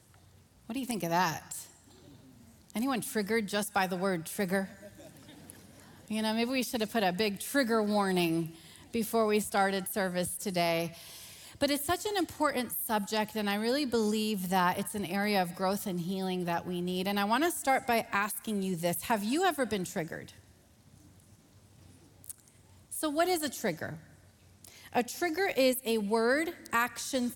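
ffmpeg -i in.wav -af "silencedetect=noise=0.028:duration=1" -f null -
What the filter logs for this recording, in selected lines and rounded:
silence_start: 1.58
silence_end: 2.70 | silence_duration: 1.13
silence_start: 20.19
silence_end: 22.24 | silence_duration: 2.05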